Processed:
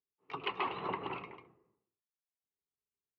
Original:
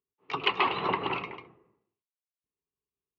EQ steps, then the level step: treble shelf 3.6 kHz -11 dB; -8.0 dB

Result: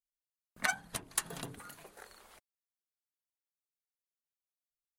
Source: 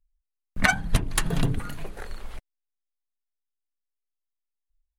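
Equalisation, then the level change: high-pass 1.4 kHz 6 dB/octave; peaking EQ 2.6 kHz -8 dB 2 oct; -3.0 dB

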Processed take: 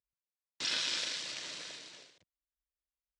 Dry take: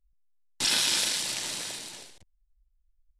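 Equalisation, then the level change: cabinet simulation 180–6700 Hz, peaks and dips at 220 Hz -9 dB, 360 Hz -4 dB, 830 Hz -10 dB; treble shelf 4.9 kHz -5.5 dB; -5.5 dB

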